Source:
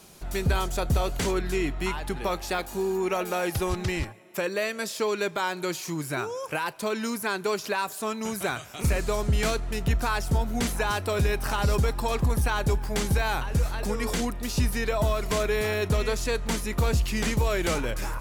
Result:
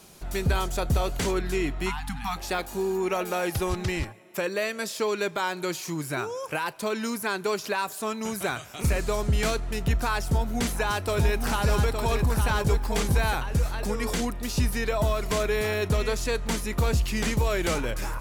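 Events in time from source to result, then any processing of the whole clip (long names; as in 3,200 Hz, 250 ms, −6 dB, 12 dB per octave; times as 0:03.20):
0:01.90–0:02.36: time-frequency box erased 290–700 Hz
0:10.21–0:13.35: single-tap delay 863 ms −6 dB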